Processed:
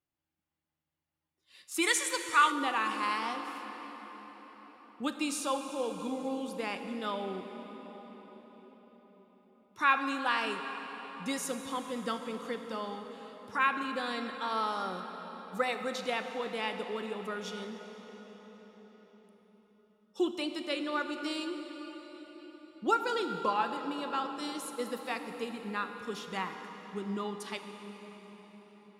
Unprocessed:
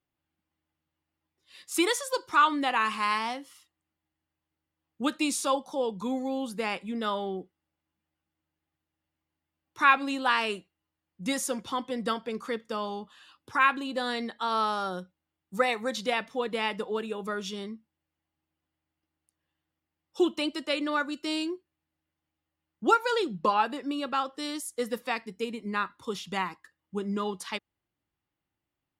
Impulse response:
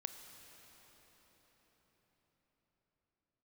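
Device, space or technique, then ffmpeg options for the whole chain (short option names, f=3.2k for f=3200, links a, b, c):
cathedral: -filter_complex "[1:a]atrim=start_sample=2205[a];[0:a][a]afir=irnorm=-1:irlink=0,asplit=3[b][c][d];[b]afade=t=out:st=1.81:d=0.02[e];[c]equalizer=f=500:t=o:w=1:g=-4,equalizer=f=2k:t=o:w=1:g=9,equalizer=f=8k:t=o:w=1:g=10,afade=t=in:st=1.81:d=0.02,afade=t=out:st=2.5:d=0.02[f];[d]afade=t=in:st=2.5:d=0.02[g];[e][f][g]amix=inputs=3:normalize=0,volume=-2dB"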